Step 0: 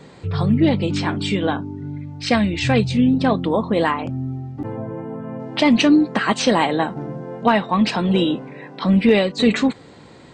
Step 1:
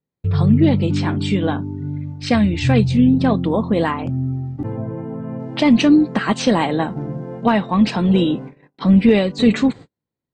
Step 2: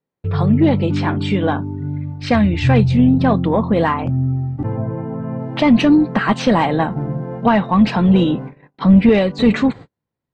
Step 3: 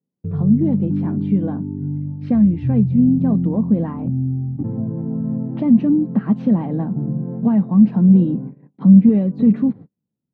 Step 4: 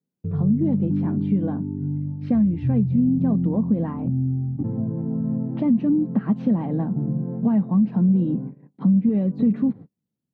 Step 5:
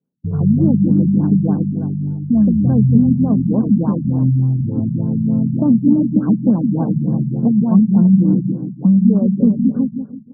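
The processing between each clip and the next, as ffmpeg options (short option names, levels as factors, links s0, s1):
-af "agate=range=0.00631:threshold=0.0224:ratio=16:detection=peak,lowshelf=f=260:g=9.5,volume=0.75"
-filter_complex "[0:a]asubboost=boost=3.5:cutoff=170,asplit=2[s0][s1];[s1]highpass=f=720:p=1,volume=5.62,asoftclip=type=tanh:threshold=1[s2];[s0][s2]amix=inputs=2:normalize=0,lowpass=f=1100:p=1,volume=0.501"
-filter_complex "[0:a]asplit=2[s0][s1];[s1]acompressor=threshold=0.0708:ratio=6,volume=1.33[s2];[s0][s2]amix=inputs=2:normalize=0,bandpass=f=200:t=q:w=2.3:csg=0"
-af "acompressor=threshold=0.224:ratio=6,volume=0.794"
-filter_complex "[0:a]asplit=2[s0][s1];[s1]aecho=0:1:169|338|507|676|845:0.668|0.287|0.124|0.0531|0.0228[s2];[s0][s2]amix=inputs=2:normalize=0,afftfilt=real='re*lt(b*sr/1024,220*pow(1700/220,0.5+0.5*sin(2*PI*3.4*pts/sr)))':imag='im*lt(b*sr/1024,220*pow(1700/220,0.5+0.5*sin(2*PI*3.4*pts/sr)))':win_size=1024:overlap=0.75,volume=1.88"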